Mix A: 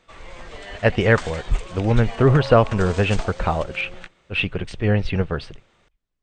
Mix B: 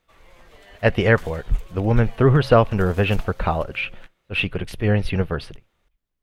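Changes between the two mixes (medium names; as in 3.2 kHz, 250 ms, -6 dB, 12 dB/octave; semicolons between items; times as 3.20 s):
background -11.0 dB; master: remove brick-wall FIR low-pass 8.9 kHz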